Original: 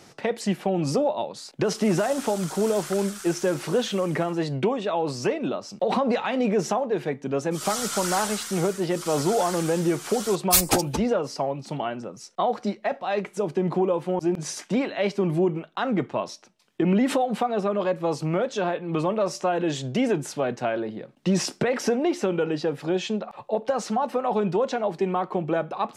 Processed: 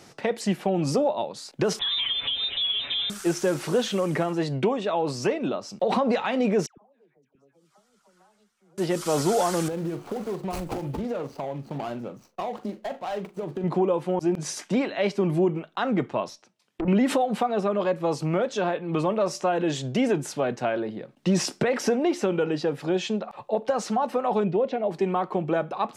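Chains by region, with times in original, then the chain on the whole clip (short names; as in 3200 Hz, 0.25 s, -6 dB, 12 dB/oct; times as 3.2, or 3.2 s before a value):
1.79–3.1 comb 6.8 ms, depth 95% + compressor 4:1, threshold -24 dBFS + inverted band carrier 3800 Hz
6.66–8.78 high shelf 5600 Hz -9 dB + flipped gate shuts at -29 dBFS, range -36 dB + dispersion lows, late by 0.113 s, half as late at 1100 Hz
9.68–13.64 median filter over 25 samples + compressor 5:1, threshold -27 dBFS + doubler 42 ms -12 dB
16.29–16.88 treble ducked by the level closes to 700 Hz, closed at -23 dBFS + tube stage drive 23 dB, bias 0.75
24.44–24.91 LPF 2500 Hz + band shelf 1200 Hz -8.5 dB 1.2 oct
whole clip: dry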